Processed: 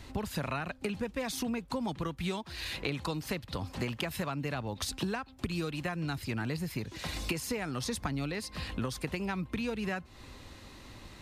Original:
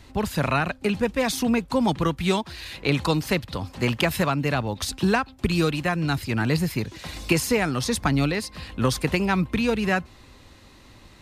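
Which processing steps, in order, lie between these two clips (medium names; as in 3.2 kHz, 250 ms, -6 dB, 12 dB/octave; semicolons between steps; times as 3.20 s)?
compression 6:1, threshold -32 dBFS, peak gain reduction 15.5 dB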